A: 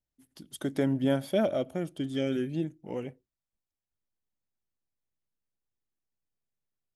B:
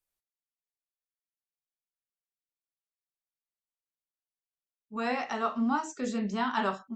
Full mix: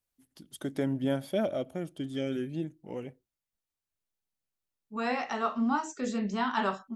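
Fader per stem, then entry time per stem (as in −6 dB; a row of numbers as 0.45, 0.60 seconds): −3.0, 0.0 decibels; 0.00, 0.00 seconds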